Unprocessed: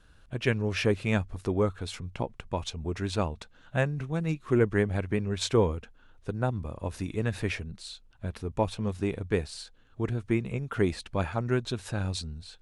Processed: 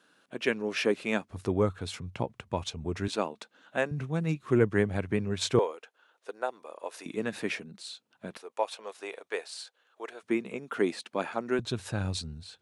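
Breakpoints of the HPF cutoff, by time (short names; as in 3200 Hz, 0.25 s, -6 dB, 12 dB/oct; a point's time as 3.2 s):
HPF 24 dB/oct
220 Hz
from 1.3 s 86 Hz
from 3.08 s 230 Hz
from 3.91 s 100 Hz
from 5.59 s 440 Hz
from 7.06 s 190 Hz
from 8.37 s 500 Hz
from 10.23 s 230 Hz
from 11.59 s 83 Hz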